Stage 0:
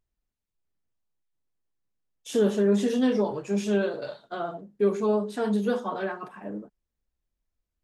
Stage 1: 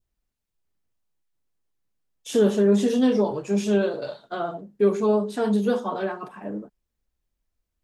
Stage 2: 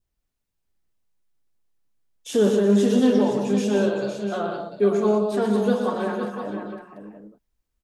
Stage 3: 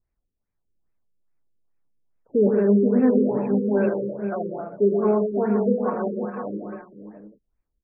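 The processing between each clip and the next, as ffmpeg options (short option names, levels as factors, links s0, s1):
-af "adynamicequalizer=threshold=0.00447:dfrequency=1800:dqfactor=1.4:tfrequency=1800:tqfactor=1.4:attack=5:release=100:ratio=0.375:range=2.5:mode=cutabove:tftype=bell,volume=1.5"
-af "aecho=1:1:119|182|512|696:0.422|0.376|0.355|0.237"
-af "afftfilt=real='re*lt(b*sr/1024,530*pow(2700/530,0.5+0.5*sin(2*PI*2.4*pts/sr)))':imag='im*lt(b*sr/1024,530*pow(2700/530,0.5+0.5*sin(2*PI*2.4*pts/sr)))':win_size=1024:overlap=0.75"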